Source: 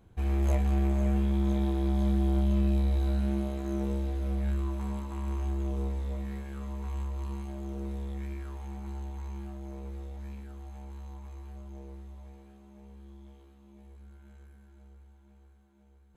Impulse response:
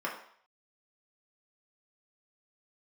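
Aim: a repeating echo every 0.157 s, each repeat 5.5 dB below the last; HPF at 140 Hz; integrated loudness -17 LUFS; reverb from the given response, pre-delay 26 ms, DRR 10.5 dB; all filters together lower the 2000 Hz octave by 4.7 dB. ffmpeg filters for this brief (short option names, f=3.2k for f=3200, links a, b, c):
-filter_complex "[0:a]highpass=140,equalizer=f=2k:t=o:g=-6,aecho=1:1:157|314|471|628|785|942|1099:0.531|0.281|0.149|0.079|0.0419|0.0222|0.0118,asplit=2[a][b];[1:a]atrim=start_sample=2205,adelay=26[c];[b][c]afir=irnorm=-1:irlink=0,volume=-17dB[d];[a][d]amix=inputs=2:normalize=0,volume=16dB"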